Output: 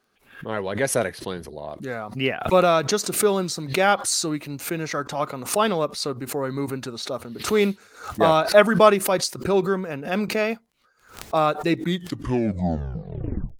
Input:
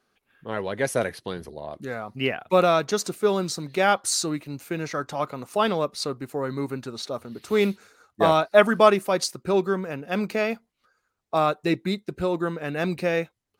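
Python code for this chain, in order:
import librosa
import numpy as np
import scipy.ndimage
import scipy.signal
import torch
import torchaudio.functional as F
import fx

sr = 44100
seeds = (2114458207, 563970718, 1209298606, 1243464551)

y = fx.tape_stop_end(x, sr, length_s=1.84)
y = fx.dmg_crackle(y, sr, seeds[0], per_s=10.0, level_db=-52.0)
y = fx.pre_swell(y, sr, db_per_s=120.0)
y = F.gain(torch.from_numpy(y), 1.5).numpy()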